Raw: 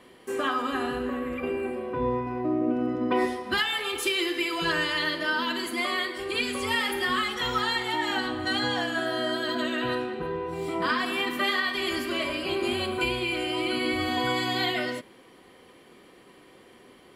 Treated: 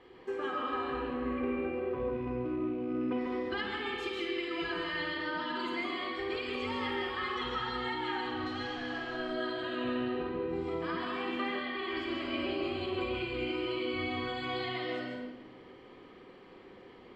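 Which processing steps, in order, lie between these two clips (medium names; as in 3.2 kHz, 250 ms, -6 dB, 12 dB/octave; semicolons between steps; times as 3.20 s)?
rattle on loud lows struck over -33 dBFS, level -35 dBFS; 11.47–11.97 s: tone controls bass -7 dB, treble -10 dB; compression, threshold -31 dBFS, peak gain reduction 10 dB; 8.29–9.17 s: hard clipper -33.5 dBFS, distortion -21 dB; distance through air 190 m; flutter echo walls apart 8.9 m, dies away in 0.36 s; reverberation RT60 1.1 s, pre-delay 130 ms, DRR 1 dB; trim -4.5 dB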